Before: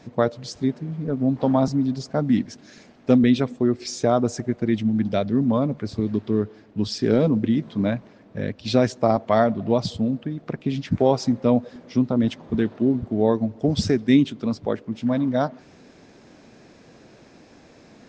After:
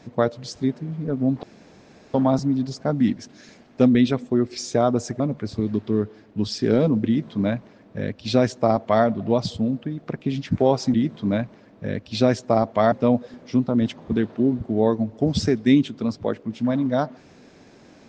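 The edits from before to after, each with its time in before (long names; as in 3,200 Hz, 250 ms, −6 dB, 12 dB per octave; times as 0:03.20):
0:01.43: splice in room tone 0.71 s
0:04.49–0:05.60: remove
0:07.47–0:09.45: duplicate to 0:11.34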